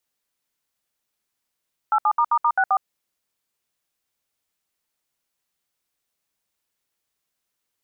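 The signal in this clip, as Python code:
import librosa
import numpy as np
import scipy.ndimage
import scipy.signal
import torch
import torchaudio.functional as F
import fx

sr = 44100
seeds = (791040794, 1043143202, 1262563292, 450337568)

y = fx.dtmf(sr, digits='87***64', tone_ms=64, gap_ms=67, level_db=-18.0)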